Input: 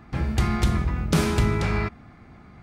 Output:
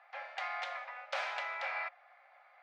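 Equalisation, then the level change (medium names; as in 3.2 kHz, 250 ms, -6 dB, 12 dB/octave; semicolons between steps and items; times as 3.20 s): rippled Chebyshev high-pass 530 Hz, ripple 6 dB; distance through air 200 m; -2.5 dB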